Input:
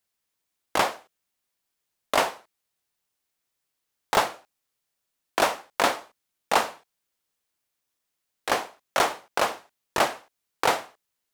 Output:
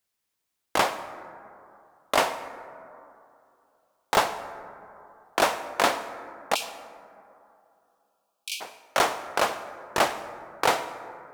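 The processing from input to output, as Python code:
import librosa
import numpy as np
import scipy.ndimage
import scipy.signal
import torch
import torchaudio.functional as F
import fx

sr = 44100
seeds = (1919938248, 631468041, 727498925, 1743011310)

y = fx.cheby1_highpass(x, sr, hz=2300.0, order=10, at=(6.54, 8.6), fade=0.02)
y = fx.rev_plate(y, sr, seeds[0], rt60_s=2.7, hf_ratio=0.3, predelay_ms=75, drr_db=12.0)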